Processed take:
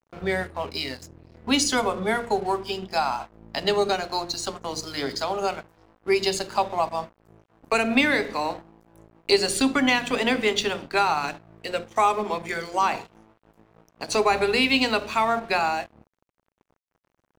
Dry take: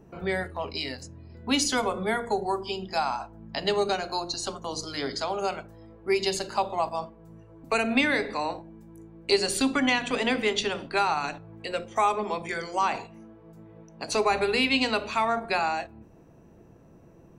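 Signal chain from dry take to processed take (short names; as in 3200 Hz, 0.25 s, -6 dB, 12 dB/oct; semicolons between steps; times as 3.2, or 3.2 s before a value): crossover distortion -46.5 dBFS; gain +3.5 dB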